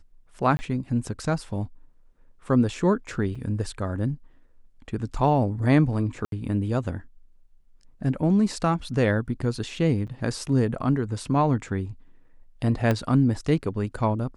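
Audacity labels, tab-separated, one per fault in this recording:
0.570000	0.590000	dropout 20 ms
3.350000	3.350000	dropout 4.7 ms
6.250000	6.320000	dropout 72 ms
10.070000	10.080000	dropout 7.1 ms
12.910000	12.910000	pop -11 dBFS

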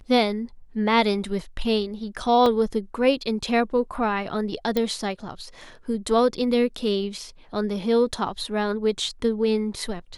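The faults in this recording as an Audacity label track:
2.460000	2.460000	dropout 2.5 ms
4.770000	4.770000	pop -11 dBFS

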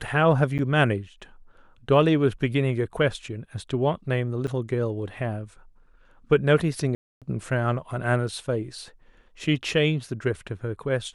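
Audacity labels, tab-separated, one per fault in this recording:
0.580000	0.590000	dropout 8.5 ms
4.470000	4.480000	dropout 6.6 ms
6.950000	7.220000	dropout 267 ms

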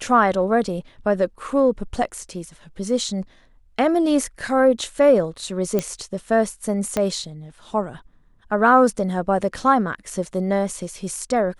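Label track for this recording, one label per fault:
5.790000	5.790000	pop -8 dBFS
6.970000	6.970000	pop -8 dBFS

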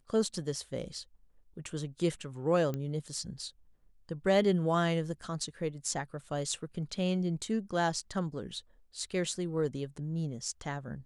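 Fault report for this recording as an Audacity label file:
2.740000	2.740000	pop -23 dBFS

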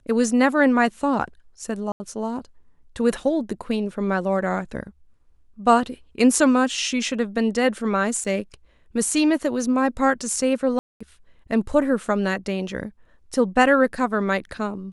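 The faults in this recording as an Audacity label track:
1.920000	2.000000	dropout 80 ms
8.240000	8.250000	dropout 6.5 ms
10.790000	11.010000	dropout 215 ms

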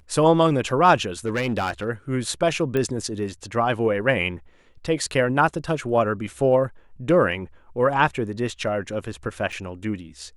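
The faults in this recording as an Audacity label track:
1.250000	1.890000	clipped -19 dBFS
2.770000	2.770000	pop -13 dBFS
9.520000	9.530000	dropout 5.3 ms

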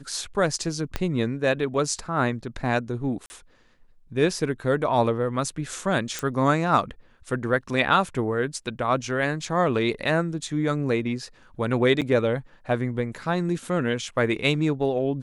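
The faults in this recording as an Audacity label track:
0.960000	0.960000	pop -11 dBFS
3.260000	3.300000	dropout 40 ms
6.190000	6.190000	pop
12.010000	12.020000	dropout 7.5 ms

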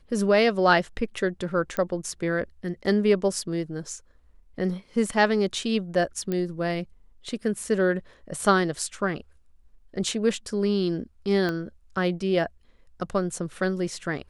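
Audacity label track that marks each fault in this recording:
1.770000	1.770000	pop -13 dBFS
6.320000	6.320000	pop -16 dBFS
11.490000	11.490000	pop -16 dBFS

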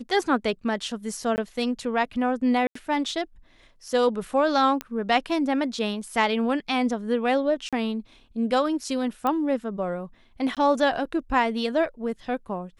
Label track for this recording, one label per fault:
1.360000	1.380000	dropout 19 ms
2.670000	2.750000	dropout 84 ms
4.810000	4.810000	pop -14 dBFS
7.690000	7.730000	dropout 36 ms
9.270000	9.270000	pop -14 dBFS
10.550000	10.570000	dropout 17 ms

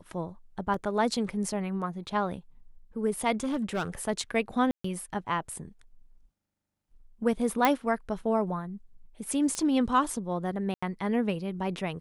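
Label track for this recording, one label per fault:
0.740000	0.740000	dropout 2.9 ms
3.320000	3.880000	clipped -25.5 dBFS
4.710000	4.840000	dropout 134 ms
7.650000	7.650000	pop -8 dBFS
9.550000	9.550000	pop -18 dBFS
10.740000	10.820000	dropout 85 ms

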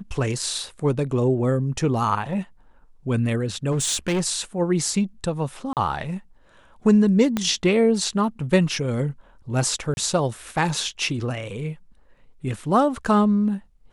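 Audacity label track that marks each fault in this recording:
3.710000	4.260000	clipped -19 dBFS
5.730000	5.770000	dropout 38 ms
7.370000	7.370000	pop -9 dBFS
9.940000	9.970000	dropout 31 ms

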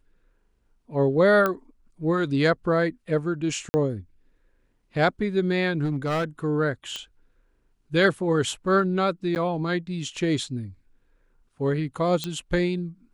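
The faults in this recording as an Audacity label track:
1.460000	1.460000	pop -11 dBFS
3.690000	3.740000	dropout 50 ms
5.840000	6.240000	clipped -21.5 dBFS
6.960000	6.960000	pop -18 dBFS
9.350000	9.360000	dropout 9.7 ms
12.240000	12.240000	pop -13 dBFS

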